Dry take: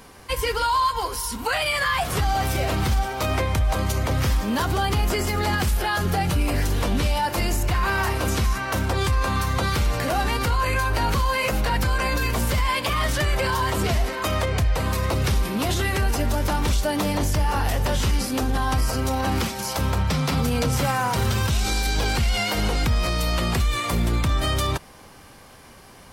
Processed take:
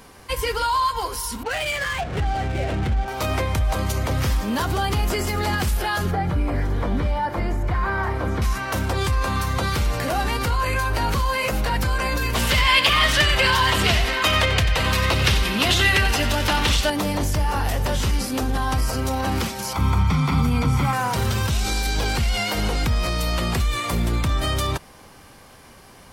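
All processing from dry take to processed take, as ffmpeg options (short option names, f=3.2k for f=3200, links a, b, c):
-filter_complex "[0:a]asettb=1/sr,asplit=3[a][b][c];[a]atrim=end=1.434[d];[b]atrim=start=1.43:end=3.08,asetpts=PTS-STARTPTS,afade=t=in:d=0.004:c=qsin,afade=t=out:st=1.646:d=0.004:c=qsin,lowpass=4k,equalizer=f=1.1k:t=o:w=0.57:g=-9.5,adynamicsmooth=sensitivity=5.5:basefreq=600[e];[c]atrim=start=3.076[f];[d][e]acrossfade=d=0.004:c1=hsin:c2=qsin[g];[g][f]acrossfade=d=0.004:c1=qsin:c2=hsin,asettb=1/sr,asplit=3[h][i][j];[h]atrim=end=6.114[k];[i]atrim=start=6.11:end=8.42,asetpts=PTS-STARTPTS,afade=t=in:d=0.004:c=qsin,afade=t=out:st=2.306:d=0.004:c=qsin,acrossover=split=2700[l][m];[m]acompressor=threshold=-44dB:ratio=4:attack=1:release=60[n];[l][n]amix=inputs=2:normalize=0,highshelf=f=4.4k:g=-8.5,bandreject=f=2.7k:w=6.2[o];[j]atrim=start=8.416[p];[k][o]acrossfade=d=0.004:c1=hsin:c2=qsin[q];[q][p]acrossfade=d=0.004:c1=qsin:c2=hsin,asettb=1/sr,asplit=3[r][s][t];[r]atrim=end=12.354[u];[s]atrim=start=12.35:end=16.9,asetpts=PTS-STARTPTS,afade=t=in:d=0.004:c=qsin,afade=t=out:st=4.546:d=0.004:c=qsin,equalizer=f=2.8k:t=o:w=1.9:g=12.5,bandreject=f=2.3k:w=18,aecho=1:1:91:0.282,atrim=end_sample=200655[v];[t]atrim=start=16.896[w];[u][v]acrossfade=d=0.004:c1=hsin:c2=qsin[x];[x][w]acrossfade=d=0.004:c1=qsin:c2=hsin,asettb=1/sr,asplit=3[y][z][aa];[y]atrim=end=19.734[ab];[z]atrim=start=19.73:end=20.93,asetpts=PTS-STARTPTS,afade=t=in:d=0.004:c=qsin,afade=t=out:st=1.196:d=0.004:c=qsin,acrossover=split=3000[ac][ad];[ad]acompressor=threshold=-40dB:ratio=4:attack=1:release=60[ae];[ac][ae]amix=inputs=2:normalize=0,aecho=1:1:0.9:0.67,atrim=end_sample=52920[af];[aa]atrim=start=20.926[ag];[ab][af]acrossfade=d=0.004:c1=hsin:c2=qsin[ah];[ah][ag]acrossfade=d=0.004:c1=qsin:c2=hsin"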